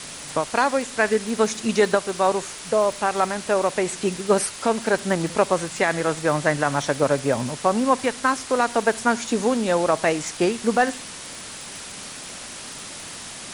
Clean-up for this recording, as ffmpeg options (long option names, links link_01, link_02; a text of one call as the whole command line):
ffmpeg -i in.wav -af "adeclick=threshold=4,afwtdn=0.02" out.wav